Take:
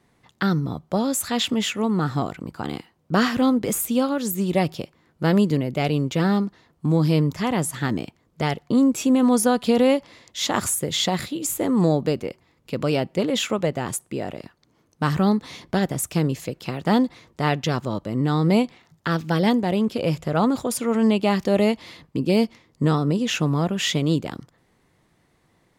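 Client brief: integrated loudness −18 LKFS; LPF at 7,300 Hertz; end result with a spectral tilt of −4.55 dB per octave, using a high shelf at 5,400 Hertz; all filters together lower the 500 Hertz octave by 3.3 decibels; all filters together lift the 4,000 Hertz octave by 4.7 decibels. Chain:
low-pass filter 7,300 Hz
parametric band 500 Hz −4 dB
parametric band 4,000 Hz +3.5 dB
high-shelf EQ 5,400 Hz +7.5 dB
level +5 dB

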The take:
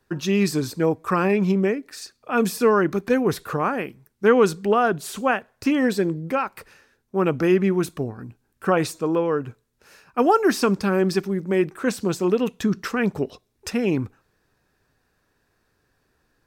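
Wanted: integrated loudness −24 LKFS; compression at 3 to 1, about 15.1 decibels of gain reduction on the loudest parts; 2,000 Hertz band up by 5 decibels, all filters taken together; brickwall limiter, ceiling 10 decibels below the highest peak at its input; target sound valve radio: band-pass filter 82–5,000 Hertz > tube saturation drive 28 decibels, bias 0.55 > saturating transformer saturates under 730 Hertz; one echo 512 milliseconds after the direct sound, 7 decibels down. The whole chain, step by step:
parametric band 2,000 Hz +7 dB
downward compressor 3 to 1, threshold −32 dBFS
brickwall limiter −26 dBFS
band-pass filter 82–5,000 Hz
single-tap delay 512 ms −7 dB
tube saturation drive 28 dB, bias 0.55
saturating transformer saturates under 730 Hz
level +18.5 dB

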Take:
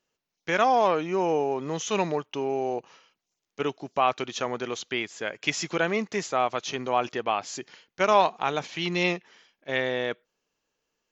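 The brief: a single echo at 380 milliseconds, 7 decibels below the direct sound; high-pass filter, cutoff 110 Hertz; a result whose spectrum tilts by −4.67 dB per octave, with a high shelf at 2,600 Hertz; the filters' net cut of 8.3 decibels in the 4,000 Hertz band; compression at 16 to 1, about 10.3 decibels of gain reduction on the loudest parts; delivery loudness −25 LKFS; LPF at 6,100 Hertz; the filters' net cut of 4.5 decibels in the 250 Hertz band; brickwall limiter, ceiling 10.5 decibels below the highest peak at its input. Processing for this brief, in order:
high-pass filter 110 Hz
low-pass filter 6,100 Hz
parametric band 250 Hz −6.5 dB
high-shelf EQ 2,600 Hz −7.5 dB
parametric band 4,000 Hz −4.5 dB
downward compressor 16 to 1, threshold −27 dBFS
brickwall limiter −25 dBFS
single-tap delay 380 ms −7 dB
level +12 dB

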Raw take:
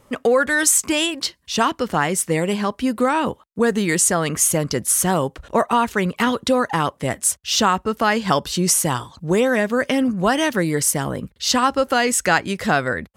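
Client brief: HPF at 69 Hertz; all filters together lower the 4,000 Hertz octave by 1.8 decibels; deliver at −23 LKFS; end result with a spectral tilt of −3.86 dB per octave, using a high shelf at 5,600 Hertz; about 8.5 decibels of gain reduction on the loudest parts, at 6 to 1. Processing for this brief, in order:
high-pass filter 69 Hz
parametric band 4,000 Hz −5.5 dB
high-shelf EQ 5,600 Hz +7 dB
downward compressor 6 to 1, threshold −18 dBFS
level −0.5 dB

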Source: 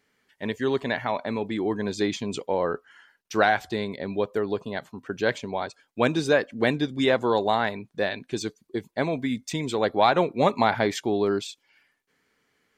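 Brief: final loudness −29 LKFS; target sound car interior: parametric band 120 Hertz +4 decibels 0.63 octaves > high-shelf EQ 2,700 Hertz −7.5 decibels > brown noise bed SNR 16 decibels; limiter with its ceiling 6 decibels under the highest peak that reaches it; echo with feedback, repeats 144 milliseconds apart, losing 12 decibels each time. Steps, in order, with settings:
brickwall limiter −13 dBFS
parametric band 120 Hz +4 dB 0.63 octaves
high-shelf EQ 2,700 Hz −7.5 dB
repeating echo 144 ms, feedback 25%, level −12 dB
brown noise bed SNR 16 dB
level −1.5 dB

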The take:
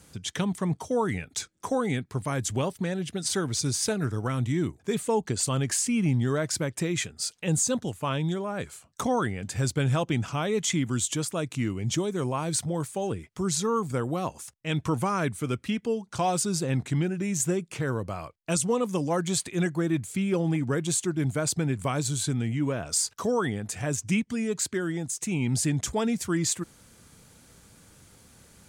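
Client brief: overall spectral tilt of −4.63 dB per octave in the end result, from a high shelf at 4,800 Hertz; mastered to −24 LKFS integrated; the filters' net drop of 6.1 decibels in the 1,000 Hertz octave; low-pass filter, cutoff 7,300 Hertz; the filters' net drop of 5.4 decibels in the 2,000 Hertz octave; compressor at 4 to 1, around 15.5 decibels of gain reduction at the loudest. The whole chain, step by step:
low-pass filter 7,300 Hz
parametric band 1,000 Hz −7 dB
parametric band 2,000 Hz −5.5 dB
high-shelf EQ 4,800 Hz +4 dB
downward compressor 4 to 1, threshold −42 dBFS
level +18.5 dB

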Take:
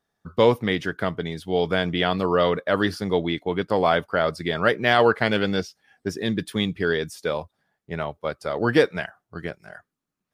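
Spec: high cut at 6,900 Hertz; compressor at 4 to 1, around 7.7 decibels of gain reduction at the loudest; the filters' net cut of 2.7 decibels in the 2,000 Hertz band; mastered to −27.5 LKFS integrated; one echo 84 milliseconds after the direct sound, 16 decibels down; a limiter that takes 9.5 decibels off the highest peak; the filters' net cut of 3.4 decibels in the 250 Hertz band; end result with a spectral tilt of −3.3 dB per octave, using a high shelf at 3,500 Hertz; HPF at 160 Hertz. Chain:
high-pass filter 160 Hz
low-pass filter 6,900 Hz
parametric band 250 Hz −3.5 dB
parametric band 2,000 Hz −5 dB
high-shelf EQ 3,500 Hz +6 dB
downward compressor 4 to 1, threshold −22 dBFS
brickwall limiter −18.5 dBFS
single-tap delay 84 ms −16 dB
level +4 dB

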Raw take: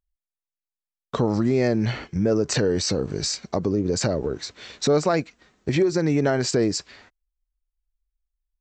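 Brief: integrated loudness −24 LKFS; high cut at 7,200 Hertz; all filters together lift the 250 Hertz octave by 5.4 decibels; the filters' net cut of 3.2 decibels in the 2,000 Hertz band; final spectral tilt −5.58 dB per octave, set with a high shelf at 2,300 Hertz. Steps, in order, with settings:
low-pass filter 7,200 Hz
parametric band 250 Hz +7 dB
parametric band 2,000 Hz −6.5 dB
high-shelf EQ 2,300 Hz +4.5 dB
level −4 dB

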